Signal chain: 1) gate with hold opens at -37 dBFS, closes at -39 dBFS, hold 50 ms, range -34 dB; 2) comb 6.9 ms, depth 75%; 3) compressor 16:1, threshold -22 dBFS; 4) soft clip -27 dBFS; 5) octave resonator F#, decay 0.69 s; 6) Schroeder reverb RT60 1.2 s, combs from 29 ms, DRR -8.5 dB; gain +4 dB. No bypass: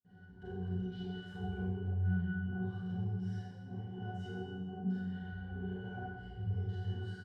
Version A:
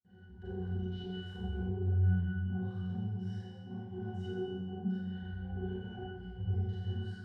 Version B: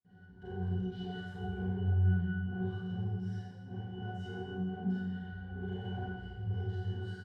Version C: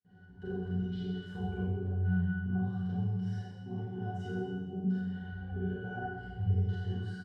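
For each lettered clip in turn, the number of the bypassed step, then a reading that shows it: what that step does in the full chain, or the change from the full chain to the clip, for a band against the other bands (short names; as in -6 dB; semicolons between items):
2, 2 kHz band -5.5 dB; 3, mean gain reduction 4.5 dB; 4, distortion -9 dB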